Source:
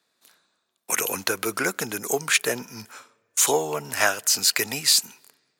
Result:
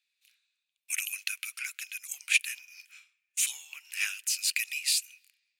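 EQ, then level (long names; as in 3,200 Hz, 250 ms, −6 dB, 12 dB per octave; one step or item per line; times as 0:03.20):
dynamic equaliser 9,700 Hz, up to +7 dB, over −38 dBFS, Q 1.6
four-pole ladder high-pass 2,300 Hz, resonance 70%
−1.0 dB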